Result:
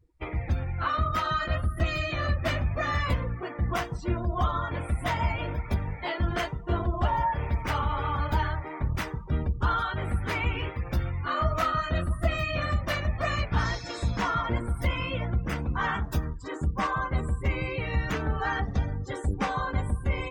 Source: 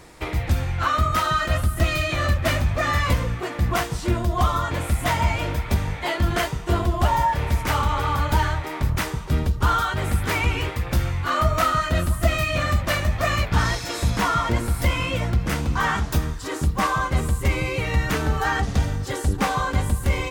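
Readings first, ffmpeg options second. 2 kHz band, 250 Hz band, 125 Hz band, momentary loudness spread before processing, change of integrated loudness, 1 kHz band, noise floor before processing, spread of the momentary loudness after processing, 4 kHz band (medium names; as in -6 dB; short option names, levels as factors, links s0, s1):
-6.5 dB, -6.0 dB, -6.0 dB, 4 LU, -6.5 dB, -6.0 dB, -32 dBFS, 4 LU, -8.0 dB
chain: -af "afftdn=nr=33:nf=-35,volume=0.501"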